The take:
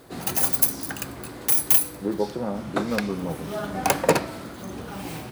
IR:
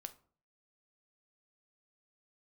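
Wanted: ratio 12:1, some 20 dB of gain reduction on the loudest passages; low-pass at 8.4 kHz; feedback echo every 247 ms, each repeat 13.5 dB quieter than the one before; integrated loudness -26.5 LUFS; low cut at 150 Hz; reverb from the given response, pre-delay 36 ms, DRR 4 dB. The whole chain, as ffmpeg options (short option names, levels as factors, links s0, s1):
-filter_complex "[0:a]highpass=150,lowpass=8400,acompressor=threshold=0.0224:ratio=12,aecho=1:1:247|494:0.211|0.0444,asplit=2[s0][s1];[1:a]atrim=start_sample=2205,adelay=36[s2];[s1][s2]afir=irnorm=-1:irlink=0,volume=1.06[s3];[s0][s3]amix=inputs=2:normalize=0,volume=2.99"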